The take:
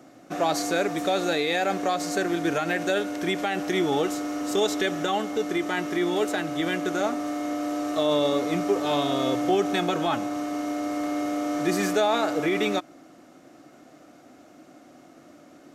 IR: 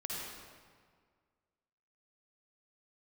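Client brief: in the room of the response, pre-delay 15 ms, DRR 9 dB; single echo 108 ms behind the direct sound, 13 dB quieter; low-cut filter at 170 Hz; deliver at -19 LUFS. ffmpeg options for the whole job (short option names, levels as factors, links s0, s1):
-filter_complex "[0:a]highpass=170,aecho=1:1:108:0.224,asplit=2[s0][s1];[1:a]atrim=start_sample=2205,adelay=15[s2];[s1][s2]afir=irnorm=-1:irlink=0,volume=0.282[s3];[s0][s3]amix=inputs=2:normalize=0,volume=2"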